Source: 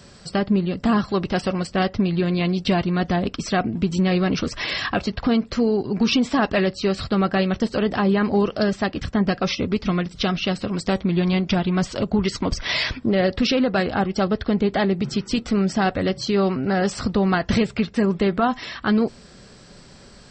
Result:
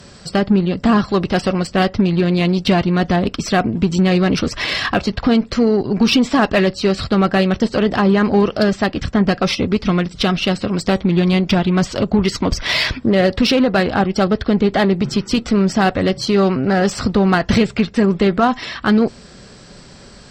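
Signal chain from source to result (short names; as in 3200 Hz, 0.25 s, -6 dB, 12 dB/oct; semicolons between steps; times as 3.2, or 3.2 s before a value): added harmonics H 8 -30 dB, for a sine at -8.5 dBFS; gain +5.5 dB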